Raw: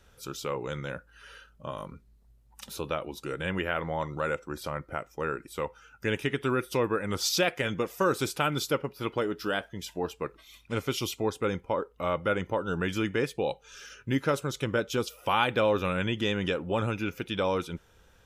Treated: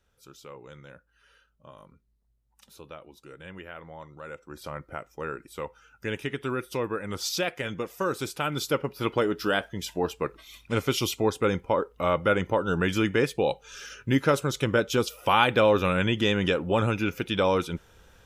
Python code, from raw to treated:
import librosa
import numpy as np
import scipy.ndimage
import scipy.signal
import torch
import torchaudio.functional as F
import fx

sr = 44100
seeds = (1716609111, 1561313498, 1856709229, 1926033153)

y = fx.gain(x, sr, db=fx.line((4.22, -12.0), (4.7, -2.5), (8.36, -2.5), (8.97, 4.5)))